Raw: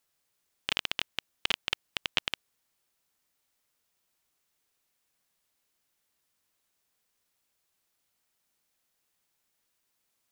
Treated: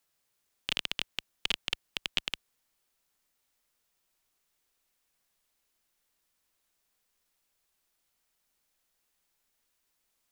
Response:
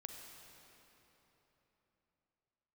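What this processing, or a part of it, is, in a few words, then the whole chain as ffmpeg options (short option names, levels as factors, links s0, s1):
one-band saturation: -filter_complex "[0:a]asubboost=boost=3:cutoff=51,acrossover=split=300|2000[s0][s1][s2];[s1]asoftclip=type=tanh:threshold=0.0282[s3];[s0][s3][s2]amix=inputs=3:normalize=0"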